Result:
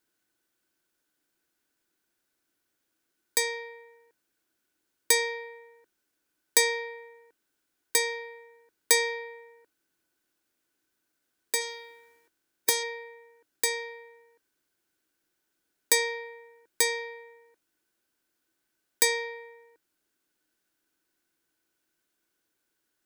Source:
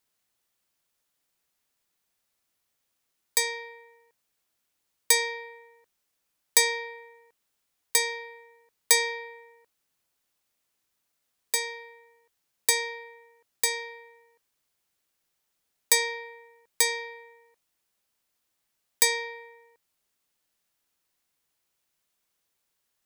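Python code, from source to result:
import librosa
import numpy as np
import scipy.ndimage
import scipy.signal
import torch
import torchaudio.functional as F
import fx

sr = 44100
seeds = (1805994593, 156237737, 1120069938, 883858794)

y = fx.spec_clip(x, sr, under_db=14, at=(11.6, 12.82), fade=0.02)
y = fx.small_body(y, sr, hz=(320.0, 1500.0), ring_ms=30, db=14)
y = F.gain(torch.from_numpy(y), -2.0).numpy()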